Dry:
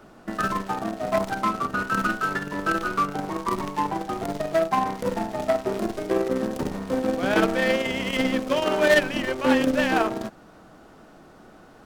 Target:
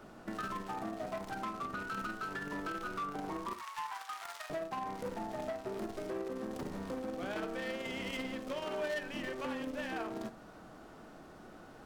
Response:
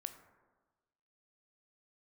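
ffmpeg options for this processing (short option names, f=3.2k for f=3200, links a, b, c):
-filter_complex "[0:a]asettb=1/sr,asplit=3[a][b][c];[a]atrim=end=3.534[d];[b]atrim=start=3.53:end=4.5,asetpts=PTS-STARTPTS,afade=t=in:d=0.004:c=qsin,afade=t=out:st=0.966:d=0.004:c=qsin,highpass=f=1.1k:w=0.5412,highpass=f=1.1k:w=1.3066[e];[c]atrim=start=4.496[f];[d][e]acrossfade=d=0.004:c1=hsin:c2=qsin[g];[g][f]acrossfade=d=0.004:c1=qsin:c2=hsin,acompressor=threshold=-30dB:ratio=6,asoftclip=type=tanh:threshold=-28.5dB[h];[1:a]atrim=start_sample=2205,atrim=end_sample=4410[i];[h][i]afir=irnorm=-1:irlink=0"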